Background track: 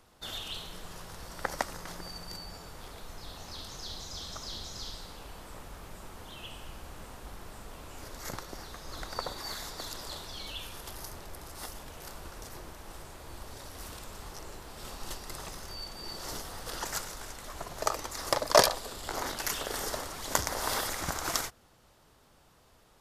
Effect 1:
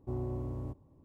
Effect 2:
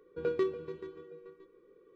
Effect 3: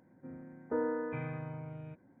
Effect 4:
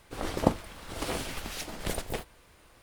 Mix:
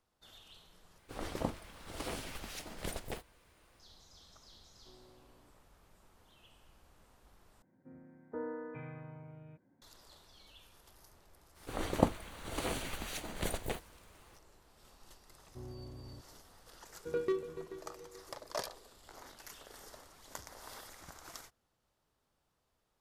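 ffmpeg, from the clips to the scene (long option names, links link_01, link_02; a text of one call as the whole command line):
ffmpeg -i bed.wav -i cue0.wav -i cue1.wav -i cue2.wav -i cue3.wav -filter_complex "[4:a]asplit=2[link_01][link_02];[1:a]asplit=2[link_03][link_04];[0:a]volume=-18.5dB[link_05];[link_01]alimiter=limit=-11dB:level=0:latency=1:release=26[link_06];[link_03]highpass=frequency=640:poles=1[link_07];[link_02]bandreject=frequency=5200:width=5.7[link_08];[link_05]asplit=3[link_09][link_10][link_11];[link_09]atrim=end=0.984[link_12];[link_06]atrim=end=2.82,asetpts=PTS-STARTPTS,volume=-7.5dB[link_13];[link_10]atrim=start=3.796:end=7.624[link_14];[3:a]atrim=end=2.2,asetpts=PTS-STARTPTS,volume=-7.5dB[link_15];[link_11]atrim=start=9.816[link_16];[link_07]atrim=end=1.04,asetpts=PTS-STARTPTS,volume=-16.5dB,afade=type=in:duration=0.004:curve=hsin,afade=type=out:start_time=1.036:duration=0.004:curve=hsin,adelay=4780[link_17];[link_08]atrim=end=2.82,asetpts=PTS-STARTPTS,volume=-3.5dB,afade=type=in:duration=0.004:curve=hsin,afade=type=out:start_time=2.816:duration=0.004:curve=hsin,adelay=11560[link_18];[link_04]atrim=end=1.04,asetpts=PTS-STARTPTS,volume=-11.5dB,afade=type=in:duration=0.004:curve=hsin,afade=type=out:start_time=1.036:duration=0.004:curve=hsin,adelay=15480[link_19];[2:a]atrim=end=1.95,asetpts=PTS-STARTPTS,volume=-3dB,afade=type=in:duration=0.004:curve=hsin,afade=type=out:start_time=1.946:duration=0.004:curve=hsin,adelay=16890[link_20];[link_12][link_13]acrossfade=duration=0.004:curve1=hsin:curve2=hsin[link_21];[link_21][link_14]acrossfade=duration=0.004:curve1=hsin:curve2=hsin[link_22];[link_22][link_15]acrossfade=duration=0.004:curve1=hsin:curve2=hsin[link_23];[link_23][link_16]acrossfade=duration=0.004:curve1=hsin:curve2=hsin[link_24];[link_24][link_17][link_18][link_19][link_20]amix=inputs=5:normalize=0" out.wav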